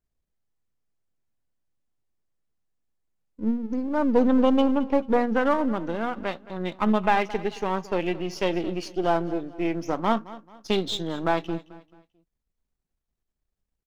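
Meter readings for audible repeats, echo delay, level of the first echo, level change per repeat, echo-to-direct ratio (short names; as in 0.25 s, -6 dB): 2, 0.219 s, -18.0 dB, -9.0 dB, -17.5 dB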